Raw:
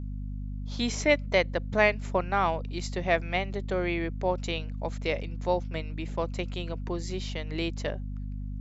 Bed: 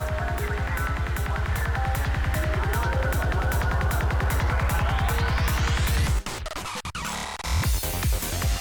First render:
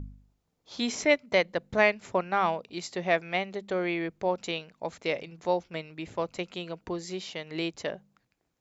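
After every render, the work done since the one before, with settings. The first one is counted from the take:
hum removal 50 Hz, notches 5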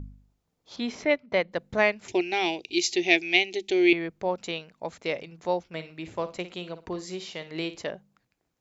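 0:00.76–0:01.52: high-frequency loss of the air 170 metres
0:02.08–0:03.93: drawn EQ curve 110 Hz 0 dB, 200 Hz −10 dB, 350 Hz +13 dB, 540 Hz −11 dB, 780 Hz 0 dB, 1,200 Hz −20 dB, 2,400 Hz +14 dB, 4,400 Hz +12 dB, 6,500 Hz +15 dB, 9,800 Hz −6 dB
0:05.68–0:07.84: flutter between parallel walls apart 9.6 metres, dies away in 0.27 s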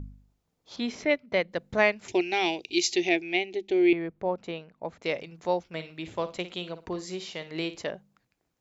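0:00.86–0:01.60: parametric band 940 Hz −3.5 dB 1.2 octaves
0:03.09–0:05.02: low-pass filter 1,200 Hz 6 dB per octave
0:05.80–0:06.70: parametric band 3,400 Hz +5.5 dB 0.4 octaves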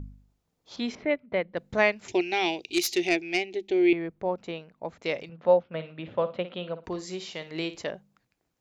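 0:00.95–0:01.57: high-frequency loss of the air 380 metres
0:02.65–0:03.61: phase distortion by the signal itself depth 0.072 ms
0:05.29–0:06.84: loudspeaker in its box 100–3,200 Hz, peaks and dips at 140 Hz +6 dB, 230 Hz +6 dB, 340 Hz −4 dB, 550 Hz +9 dB, 1,300 Hz +4 dB, 2,200 Hz −5 dB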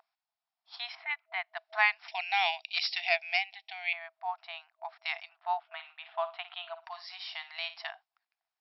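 noise gate −46 dBFS, range −8 dB
brick-wall band-pass 650–5,600 Hz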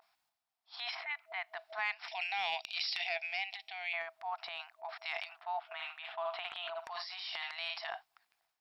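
downward compressor 3 to 1, threshold −35 dBFS, peak gain reduction 11.5 dB
transient designer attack −4 dB, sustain +11 dB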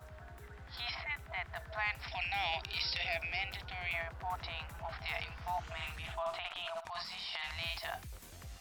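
mix in bed −24.5 dB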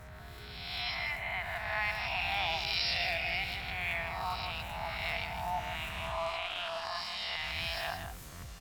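peak hold with a rise ahead of every peak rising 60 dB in 1.32 s
single-tap delay 160 ms −7.5 dB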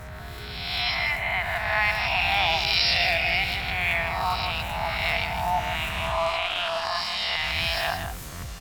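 level +10 dB

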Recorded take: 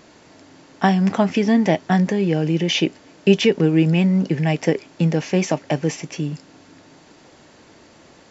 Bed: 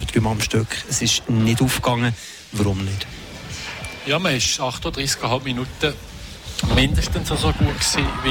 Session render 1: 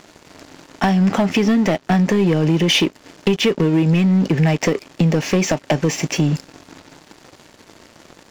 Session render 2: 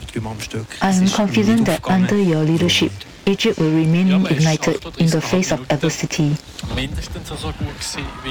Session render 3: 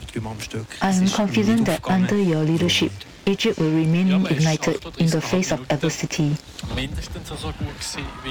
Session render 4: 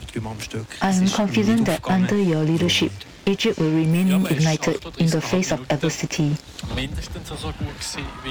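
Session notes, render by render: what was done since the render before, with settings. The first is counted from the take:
downward compressor 16 to 1, threshold −21 dBFS, peak gain reduction 14 dB; leveller curve on the samples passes 3
mix in bed −6.5 dB
level −3.5 dB
0:03.91–0:04.34: bad sample-rate conversion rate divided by 4×, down none, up hold

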